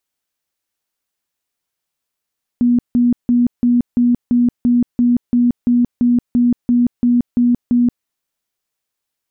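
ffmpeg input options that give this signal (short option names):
-f lavfi -i "aevalsrc='0.335*sin(2*PI*242*mod(t,0.34))*lt(mod(t,0.34),43/242)':d=5.44:s=44100"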